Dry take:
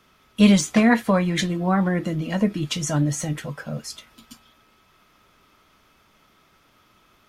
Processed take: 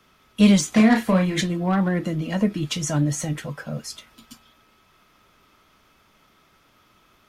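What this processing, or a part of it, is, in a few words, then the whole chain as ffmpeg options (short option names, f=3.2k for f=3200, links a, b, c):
one-band saturation: -filter_complex "[0:a]acrossover=split=370|4100[a][b][c];[b]asoftclip=type=tanh:threshold=-19dB[d];[a][d][c]amix=inputs=3:normalize=0,asettb=1/sr,asplit=3[e][f][g];[e]atrim=end=0.694[h];[f]atrim=start=0.69:end=1.41,asetpts=PTS-STARTPTS,afade=t=in:d=0.004:c=qsin,afade=t=out:st=0.716:d=0.004:c=qsin,asplit=2[i][j];[j]adelay=32,volume=-4dB[k];[i][k]amix=inputs=2:normalize=0,atrim=end_sample=31752[l];[g]atrim=start=1.406[m];[h][l]acrossfade=d=0.004:c1=hsin:c2=qsin[n];[n][m]acrossfade=d=0.004:c1=qsin:c2=hsin"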